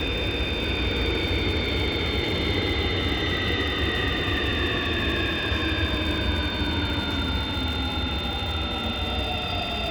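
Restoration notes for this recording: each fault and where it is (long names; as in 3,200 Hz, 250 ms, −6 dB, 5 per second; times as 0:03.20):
surface crackle 180 per second −32 dBFS
whistle 3,600 Hz −31 dBFS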